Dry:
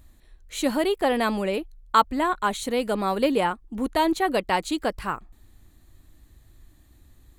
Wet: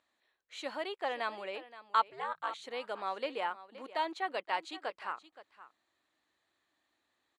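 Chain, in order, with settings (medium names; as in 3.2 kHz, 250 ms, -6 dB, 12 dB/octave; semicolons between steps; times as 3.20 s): 2.05–2.64 s: ring modulator 130 Hz; band-pass 650–4200 Hz; delay 522 ms -16 dB; trim -9 dB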